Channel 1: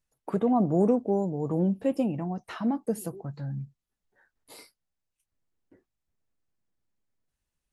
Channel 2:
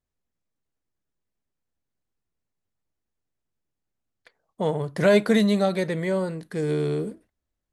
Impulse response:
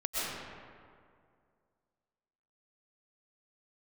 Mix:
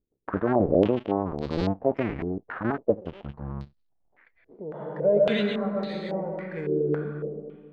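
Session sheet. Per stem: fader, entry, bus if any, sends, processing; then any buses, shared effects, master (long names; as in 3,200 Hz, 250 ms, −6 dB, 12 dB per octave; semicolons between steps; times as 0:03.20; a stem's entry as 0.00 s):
+1.5 dB, 0.00 s, no send, sub-harmonics by changed cycles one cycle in 2, muted; low-pass filter 3,000 Hz 6 dB per octave
−11.5 dB, 0.00 s, send −6.5 dB, automatic ducking −15 dB, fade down 0.30 s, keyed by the first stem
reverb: on, RT60 2.2 s, pre-delay 85 ms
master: low-pass on a step sequencer 3.6 Hz 390–4,300 Hz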